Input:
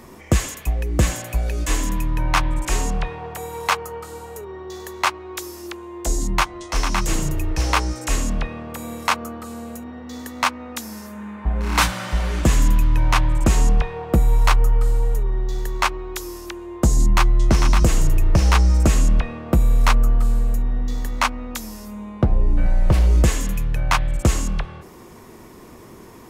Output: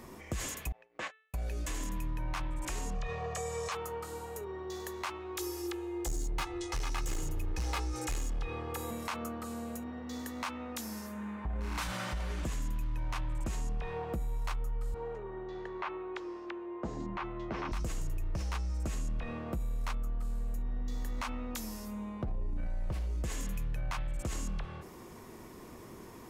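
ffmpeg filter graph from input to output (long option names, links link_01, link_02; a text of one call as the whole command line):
ffmpeg -i in.wav -filter_complex "[0:a]asettb=1/sr,asplit=3[link_01][link_02][link_03];[link_01]atrim=end=0.724[link_04];[link_02]atrim=start=0.72:end=1.34,asetpts=PTS-STARTPTS,afade=type=in:duration=0.004:curve=qsin,afade=type=out:start_time=0.616:duration=0.004:curve=qsin,agate=range=-53dB:threshold=-20dB:ratio=16:release=100:detection=peak,highpass=740,lowpass=2600[link_05];[link_03]atrim=start=1.336[link_06];[link_04][link_05]acrossfade=duration=0.004:curve1=hsin:curve2=qsin[link_07];[link_07][link_06]acrossfade=duration=0.004:curve1=qsin:curve2=hsin,asettb=1/sr,asplit=3[link_08][link_09][link_10];[link_08]atrim=end=2.954[link_11];[link_09]atrim=start=2.95:end=3.72,asetpts=PTS-STARTPTS,afade=type=in:duration=0.004:curve=qsin,afade=type=out:start_time=0.766:duration=0.004:curve=qsin,lowpass=frequency=6900:width_type=q:width=2.9,aecho=1:1:1.7:0.85,atrim=end_sample=33957[link_12];[link_10]atrim=start=3.716[link_13];[link_11][link_12]acrossfade=duration=0.004:curve1=hsin:curve2=qsin[link_14];[link_14][link_13]acrossfade=duration=0.004:curve1=qsin:curve2=hsin,asettb=1/sr,asplit=3[link_15][link_16][link_17];[link_15]atrim=end=5.384[link_18];[link_16]atrim=start=5.38:end=8.91,asetpts=PTS-STARTPTS,afade=type=in:duration=0.004:curve=qsin,afade=type=out:start_time=3.526:duration=0.004:curve=qsin,aecho=1:1:2.4:0.97,atrim=end_sample=155673,asoftclip=type=hard:threshold=-14dB[link_19];[link_17]atrim=start=8.906[link_20];[link_18][link_19]acrossfade=duration=0.004:curve1=hsin:curve2=qsin[link_21];[link_21][link_20]acrossfade=duration=0.004:curve1=qsin:curve2=hsin,asettb=1/sr,asplit=3[link_22][link_23][link_24];[link_22]atrim=end=14.944[link_25];[link_23]atrim=start=14.94:end=17.72,asetpts=PTS-STARTPTS,afade=type=in:duration=0.004:curve=qsin,afade=type=out:start_time=2.776:duration=0.004:curve=qsin,highpass=380,lowpass=2800,aemphasis=mode=reproduction:type=bsi[link_26];[link_24]atrim=start=17.716[link_27];[link_25][link_26]acrossfade=duration=0.004:curve1=hsin:curve2=qsin[link_28];[link_28][link_27]acrossfade=duration=0.004:curve1=qsin:curve2=hsin,bandreject=frequency=438.1:width_type=h:width=4,bandreject=frequency=876.2:width_type=h:width=4,bandreject=frequency=1314.3:width_type=h:width=4,bandreject=frequency=1752.4:width_type=h:width=4,bandreject=frequency=2190.5:width_type=h:width=4,bandreject=frequency=2628.6:width_type=h:width=4,bandreject=frequency=3066.7:width_type=h:width=4,bandreject=frequency=3504.8:width_type=h:width=4,bandreject=frequency=3942.9:width_type=h:width=4,alimiter=limit=-20dB:level=0:latency=1:release=25,acompressor=threshold=-27dB:ratio=2,volume=-6.5dB" out.wav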